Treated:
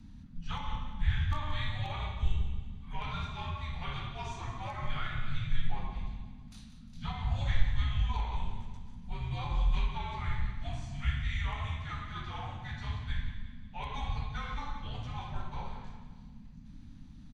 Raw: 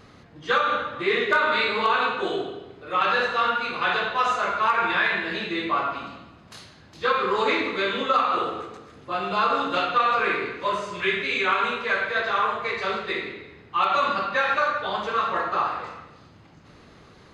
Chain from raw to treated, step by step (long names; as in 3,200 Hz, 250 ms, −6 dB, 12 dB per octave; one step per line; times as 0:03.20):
drawn EQ curve 210 Hz 0 dB, 310 Hz +12 dB, 550 Hz −25 dB, 6,600 Hz −10 dB
frequency shifter −320 Hz
repeating echo 177 ms, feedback 48%, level −12 dB